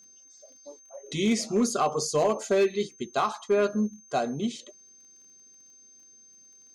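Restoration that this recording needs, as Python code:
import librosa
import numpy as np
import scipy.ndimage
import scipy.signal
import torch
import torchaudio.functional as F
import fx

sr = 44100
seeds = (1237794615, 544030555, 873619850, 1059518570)

y = fx.fix_declip(x, sr, threshold_db=-17.0)
y = fx.fix_declick_ar(y, sr, threshold=6.5)
y = fx.notch(y, sr, hz=6300.0, q=30.0)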